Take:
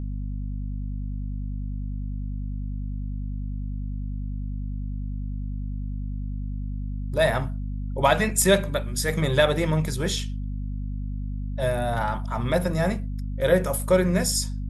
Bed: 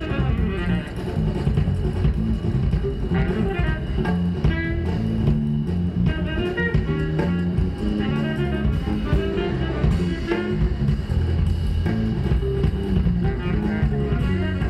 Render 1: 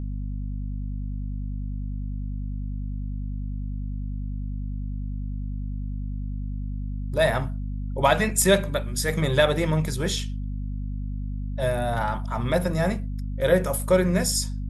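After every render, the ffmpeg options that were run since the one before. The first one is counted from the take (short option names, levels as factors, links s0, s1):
-af anull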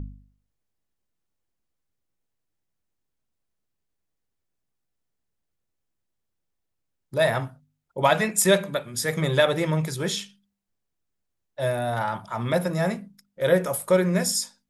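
-af "bandreject=f=50:t=h:w=4,bandreject=f=100:t=h:w=4,bandreject=f=150:t=h:w=4,bandreject=f=200:t=h:w=4,bandreject=f=250:t=h:w=4"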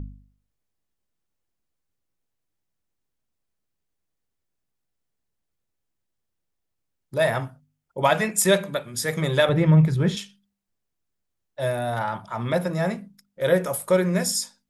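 -filter_complex "[0:a]asettb=1/sr,asplit=3[s0][s1][s2];[s0]atrim=end=7.194[s3];[s1]atrim=start=7.19:end=8.39,asetpts=PTS-STARTPTS,afade=t=in:d=0.004:c=qsin,afade=t=out:st=1.196:d=0.004:c=qsin,bandreject=f=3900:w=12[s4];[s2]atrim=start=8.386[s5];[s3][s4]acrossfade=d=0.004:c1=hsin:c2=qsin[s6];[s6][s5]acrossfade=d=0.004:c1=qsin:c2=hsin,asettb=1/sr,asplit=3[s7][s8][s9];[s7]atrim=end=9.494[s10];[s8]atrim=start=9.49:end=10.17,asetpts=PTS-STARTPTS,afade=t=in:d=0.004:c=qsin,afade=t=out:st=0.676:d=0.004:c=qsin,bass=f=250:g=12,treble=f=4000:g=-14[s11];[s9]atrim=start=10.166[s12];[s10][s11]acrossfade=d=0.004:c1=hsin:c2=qsin[s13];[s13][s12]acrossfade=d=0.004:c1=qsin:c2=hsin,asettb=1/sr,asplit=3[s14][s15][s16];[s14]atrim=end=11.994[s17];[s15]atrim=start=11.99:end=12.98,asetpts=PTS-STARTPTS,afade=t=in:d=0.004:c=qsin,afade=t=out:st=0.986:d=0.004:c=qsin,highshelf=f=6500:g=-5.5[s18];[s16]atrim=start=12.976[s19];[s17][s18]acrossfade=d=0.004:c1=hsin:c2=qsin[s20];[s20][s19]acrossfade=d=0.004:c1=qsin:c2=hsin"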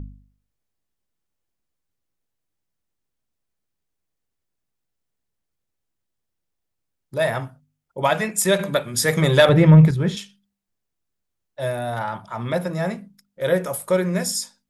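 -filter_complex "[0:a]asettb=1/sr,asplit=3[s0][s1][s2];[s0]atrim=end=8.594[s3];[s1]atrim=start=8.59:end=9.91,asetpts=PTS-STARTPTS,afade=t=in:d=0.004:c=qsin,afade=t=out:st=1.316:d=0.004:c=qsin,acontrast=71[s4];[s2]atrim=start=9.906[s5];[s3][s4]acrossfade=d=0.004:c1=hsin:c2=qsin[s6];[s6][s5]acrossfade=d=0.004:c1=qsin:c2=hsin"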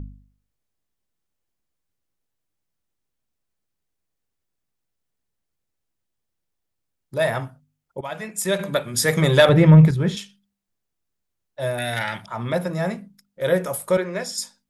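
-filter_complex "[0:a]asettb=1/sr,asplit=3[s0][s1][s2];[s0]atrim=end=11.784[s3];[s1]atrim=start=11.78:end=12.26,asetpts=PTS-STARTPTS,afade=t=in:d=0.004:c=qsin,afade=t=out:st=0.476:d=0.004:c=qsin,highshelf=f=1500:t=q:w=3:g=9.5[s4];[s2]atrim=start=12.256[s5];[s3][s4]acrossfade=d=0.004:c1=hsin:c2=qsin[s6];[s6][s5]acrossfade=d=0.004:c1=qsin:c2=hsin,asettb=1/sr,asplit=3[s7][s8][s9];[s7]atrim=end=13.974[s10];[s8]atrim=start=13.97:end=14.38,asetpts=PTS-STARTPTS,afade=t=in:d=0.004:c=qsin,afade=t=out:st=0.406:d=0.004:c=qsin,acrossover=split=280 5600:gain=0.158 1 0.178[s11][s12][s13];[s11][s12][s13]amix=inputs=3:normalize=0[s14];[s9]atrim=start=14.376[s15];[s10][s14]acrossfade=d=0.004:c1=hsin:c2=qsin[s16];[s16][s15]acrossfade=d=0.004:c1=qsin:c2=hsin,asplit=2[s17][s18];[s17]atrim=end=8.01,asetpts=PTS-STARTPTS,afade=t=out:st=8.006:d=0.004:c=hsin:silence=0.158489[s19];[s18]atrim=start=8.01,asetpts=PTS-STARTPTS,afade=t=in:d=0.89:silence=0.158489[s20];[s19][s20]concat=n=2:v=0:a=1"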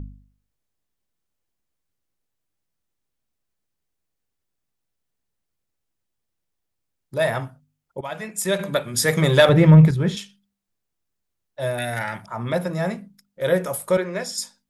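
-filter_complex "[0:a]asettb=1/sr,asplit=3[s0][s1][s2];[s0]atrim=end=9.164[s3];[s1]atrim=start=9.16:end=9.75,asetpts=PTS-STARTPTS,afade=t=in:d=0.004:c=qsin,afade=t=out:st=0.586:d=0.004:c=qsin,aeval=exprs='sgn(val(0))*max(abs(val(0))-0.00473,0)':c=same[s4];[s2]atrim=start=9.746[s5];[s3][s4]acrossfade=d=0.004:c1=hsin:c2=qsin[s6];[s6][s5]acrossfade=d=0.004:c1=qsin:c2=hsin,asettb=1/sr,asplit=3[s7][s8][s9];[s7]atrim=end=11.854[s10];[s8]atrim=start=11.85:end=12.47,asetpts=PTS-STARTPTS,afade=t=in:d=0.004:c=qsin,afade=t=out:st=0.616:d=0.004:c=qsin,equalizer=f=3400:t=o:w=0.77:g=-12[s11];[s9]atrim=start=12.466[s12];[s10][s11]acrossfade=d=0.004:c1=hsin:c2=qsin[s13];[s13][s12]acrossfade=d=0.004:c1=qsin:c2=hsin"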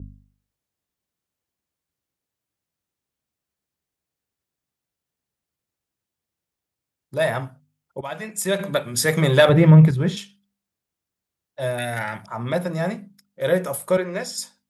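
-af "highpass=55,adynamicequalizer=threshold=0.00794:dfrequency=5900:dqfactor=1.1:tfrequency=5900:tqfactor=1.1:attack=5:release=100:ratio=0.375:range=3.5:mode=cutabove:tftype=bell"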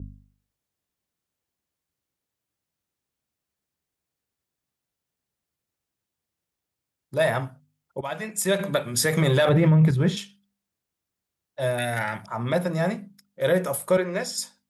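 -af "alimiter=limit=0.266:level=0:latency=1:release=40"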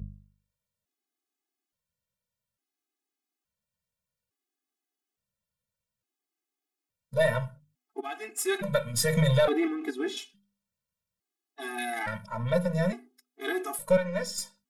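-af "aeval=exprs='if(lt(val(0),0),0.708*val(0),val(0))':c=same,afftfilt=real='re*gt(sin(2*PI*0.58*pts/sr)*(1-2*mod(floor(b*sr/1024/220),2)),0)':imag='im*gt(sin(2*PI*0.58*pts/sr)*(1-2*mod(floor(b*sr/1024/220),2)),0)':win_size=1024:overlap=0.75"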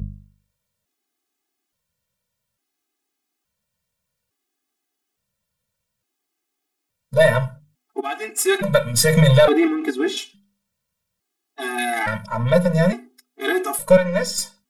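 -af "volume=3.16"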